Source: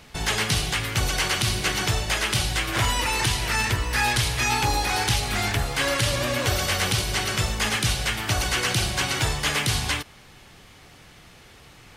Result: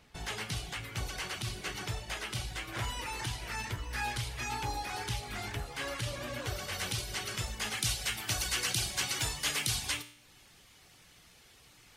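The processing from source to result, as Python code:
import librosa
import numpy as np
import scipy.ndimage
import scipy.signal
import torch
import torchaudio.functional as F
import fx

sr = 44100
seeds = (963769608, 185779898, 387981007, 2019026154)

y = fx.dereverb_blind(x, sr, rt60_s=0.52)
y = fx.high_shelf(y, sr, hz=2900.0, db=fx.steps((0.0, -2.5), (6.72, 3.5), (7.77, 10.0)))
y = fx.comb_fb(y, sr, f0_hz=59.0, decay_s=0.66, harmonics='all', damping=0.0, mix_pct=60)
y = y * librosa.db_to_amplitude(-6.5)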